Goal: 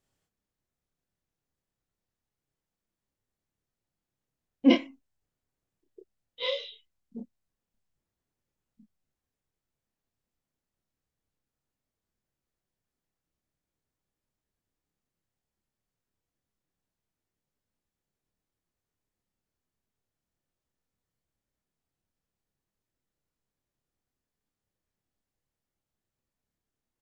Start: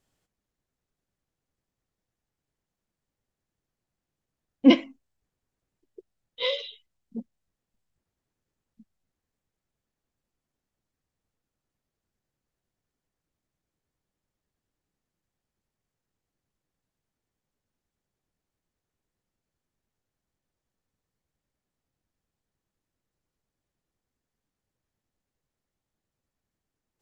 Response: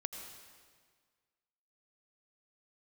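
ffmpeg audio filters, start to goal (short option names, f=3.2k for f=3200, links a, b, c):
-filter_complex "[0:a]asplit=2[a][b];[b]adelay=29,volume=-3.5dB[c];[a][c]amix=inputs=2:normalize=0,volume=-5dB"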